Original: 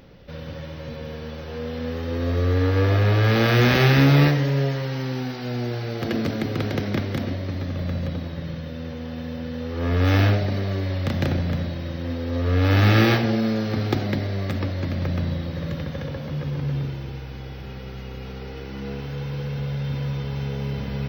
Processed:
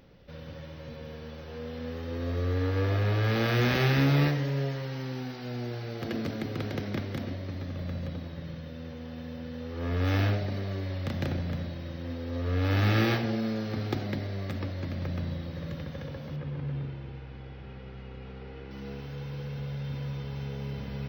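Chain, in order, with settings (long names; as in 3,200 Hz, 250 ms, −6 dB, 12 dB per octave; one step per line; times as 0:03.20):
0:16.36–0:18.71: low-pass filter 3,100 Hz 12 dB per octave
level −8 dB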